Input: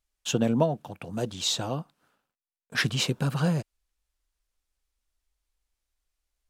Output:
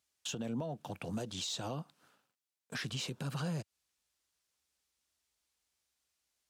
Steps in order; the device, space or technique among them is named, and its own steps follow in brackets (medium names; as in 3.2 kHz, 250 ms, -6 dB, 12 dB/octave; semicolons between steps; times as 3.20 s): broadcast voice chain (high-pass 84 Hz 24 dB/octave; de-esser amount 55%; compression 5:1, threshold -34 dBFS, peak gain reduction 15 dB; peaking EQ 5.7 kHz +5 dB 2.2 oct; peak limiter -29.5 dBFS, peak gain reduction 10.5 dB)